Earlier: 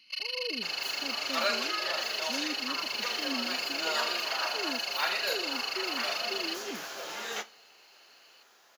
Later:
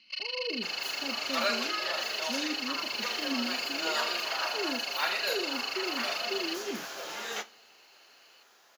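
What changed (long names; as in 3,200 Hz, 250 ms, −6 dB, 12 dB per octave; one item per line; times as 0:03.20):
speech: send +11.5 dB
first sound: add band-pass filter 100–5,600 Hz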